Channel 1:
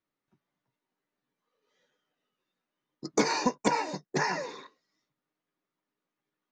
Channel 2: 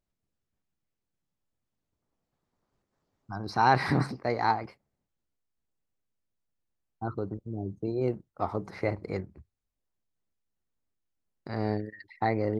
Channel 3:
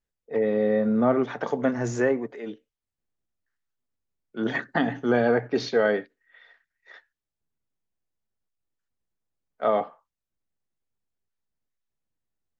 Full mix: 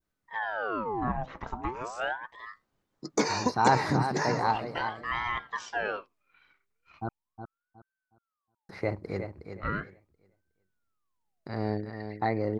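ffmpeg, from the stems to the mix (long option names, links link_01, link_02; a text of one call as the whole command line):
ffmpeg -i stem1.wav -i stem2.wav -i stem3.wav -filter_complex "[0:a]volume=-1dB[link_01];[1:a]volume=-1dB,asplit=3[link_02][link_03][link_04];[link_02]atrim=end=7.09,asetpts=PTS-STARTPTS,afade=type=out:start_time=7.086:duration=0.004:curve=hsin[link_05];[link_03]atrim=start=7.09:end=8.69,asetpts=PTS-STARTPTS,volume=0[link_06];[link_04]atrim=start=8.69,asetpts=PTS-STARTPTS,afade=type=in:duration=0.004:curve=hsin[link_07];[link_05][link_06][link_07]concat=n=3:v=0:a=1,asplit=2[link_08][link_09];[link_09]volume=-8.5dB[link_10];[2:a]aeval=exprs='val(0)*sin(2*PI*970*n/s+970*0.6/0.38*sin(2*PI*0.38*n/s))':channel_layout=same,volume=-6.5dB,asplit=2[link_11][link_12];[link_12]apad=whole_len=287413[link_13];[link_01][link_13]sidechaincompress=threshold=-41dB:ratio=8:attack=16:release=327[link_14];[link_10]aecho=0:1:365|730|1095|1460:1|0.24|0.0576|0.0138[link_15];[link_14][link_08][link_11][link_15]amix=inputs=4:normalize=0,adynamicequalizer=threshold=0.00398:dfrequency=2400:dqfactor=1.7:tfrequency=2400:tqfactor=1.7:attack=5:release=100:ratio=0.375:range=2.5:mode=cutabove:tftype=bell" out.wav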